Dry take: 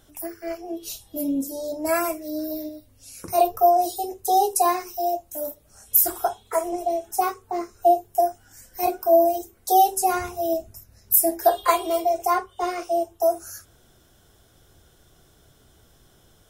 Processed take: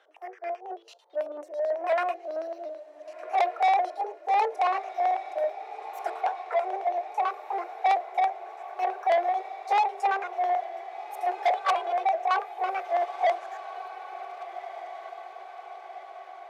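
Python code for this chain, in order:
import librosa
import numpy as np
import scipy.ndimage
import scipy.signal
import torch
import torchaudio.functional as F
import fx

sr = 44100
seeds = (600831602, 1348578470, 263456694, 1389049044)

p1 = fx.pitch_ramps(x, sr, semitones=2.0, every_ms=379)
p2 = fx.dynamic_eq(p1, sr, hz=580.0, q=8.0, threshold_db=-44.0, ratio=4.0, max_db=7)
p3 = fx.filter_lfo_lowpass(p2, sr, shape='square', hz=9.1, low_hz=680.0, high_hz=2300.0, q=1.3)
p4 = 10.0 ** (-18.5 / 20.0) * np.tanh(p3 / 10.0 ** (-18.5 / 20.0))
p5 = scipy.signal.sosfilt(scipy.signal.butter(6, 460.0, 'highpass', fs=sr, output='sos'), p4)
y = p5 + fx.echo_diffused(p5, sr, ms=1568, feedback_pct=61, wet_db=-13.0, dry=0)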